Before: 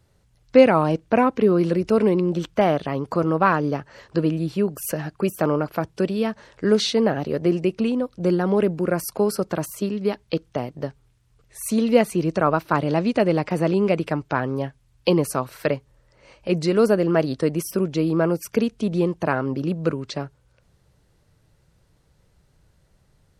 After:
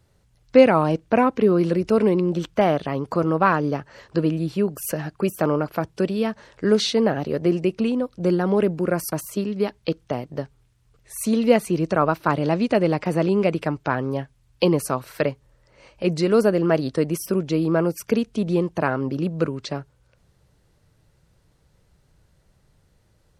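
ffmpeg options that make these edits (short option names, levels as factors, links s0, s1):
-filter_complex "[0:a]asplit=2[s0][s1];[s0]atrim=end=9.122[s2];[s1]atrim=start=9.568[s3];[s2][s3]acrossfade=d=0.004:c1=hsin:c2=hsin"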